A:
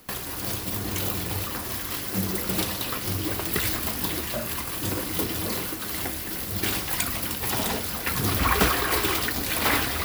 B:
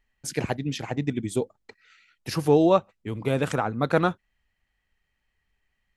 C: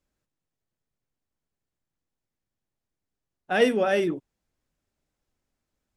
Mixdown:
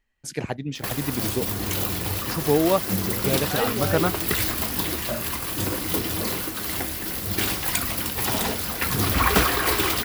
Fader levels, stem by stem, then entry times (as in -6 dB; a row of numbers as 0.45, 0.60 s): +2.0, -1.5, -7.0 dB; 0.75, 0.00, 0.00 s